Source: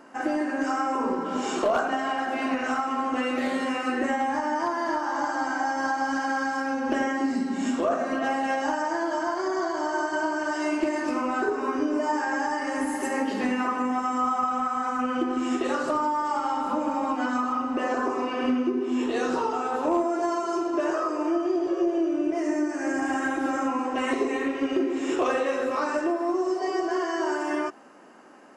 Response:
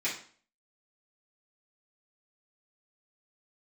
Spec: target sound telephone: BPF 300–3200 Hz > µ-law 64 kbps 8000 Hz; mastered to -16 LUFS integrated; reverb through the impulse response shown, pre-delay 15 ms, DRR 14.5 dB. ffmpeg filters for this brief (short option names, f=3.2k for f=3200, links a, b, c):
-filter_complex "[0:a]asplit=2[a][b];[1:a]atrim=start_sample=2205,adelay=15[c];[b][c]afir=irnorm=-1:irlink=0,volume=-22dB[d];[a][d]amix=inputs=2:normalize=0,highpass=300,lowpass=3.2k,volume=12dB" -ar 8000 -c:a pcm_mulaw